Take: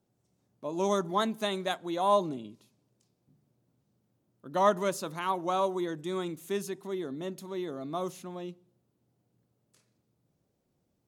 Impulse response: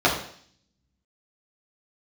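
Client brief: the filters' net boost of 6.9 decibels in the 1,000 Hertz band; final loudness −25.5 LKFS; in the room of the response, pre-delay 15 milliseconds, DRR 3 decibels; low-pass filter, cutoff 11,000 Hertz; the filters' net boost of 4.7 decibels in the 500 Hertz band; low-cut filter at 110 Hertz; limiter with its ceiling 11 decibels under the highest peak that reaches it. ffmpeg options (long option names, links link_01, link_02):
-filter_complex "[0:a]highpass=110,lowpass=11000,equalizer=frequency=500:width_type=o:gain=4,equalizer=frequency=1000:width_type=o:gain=7,alimiter=limit=-17dB:level=0:latency=1,asplit=2[link_01][link_02];[1:a]atrim=start_sample=2205,adelay=15[link_03];[link_02][link_03]afir=irnorm=-1:irlink=0,volume=-22dB[link_04];[link_01][link_04]amix=inputs=2:normalize=0,volume=2dB"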